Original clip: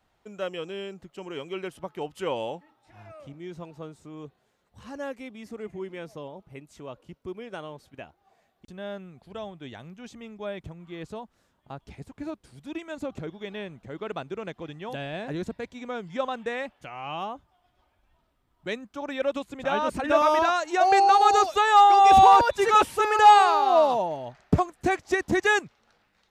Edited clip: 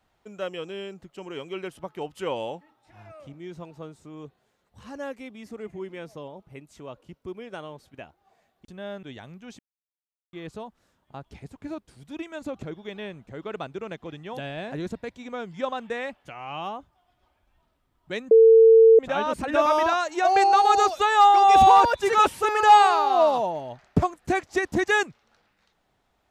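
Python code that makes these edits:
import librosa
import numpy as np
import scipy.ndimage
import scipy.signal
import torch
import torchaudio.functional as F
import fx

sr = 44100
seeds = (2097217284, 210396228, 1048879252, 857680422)

y = fx.edit(x, sr, fx.cut(start_s=9.03, length_s=0.56),
    fx.silence(start_s=10.15, length_s=0.74),
    fx.bleep(start_s=18.87, length_s=0.68, hz=450.0, db=-9.5), tone=tone)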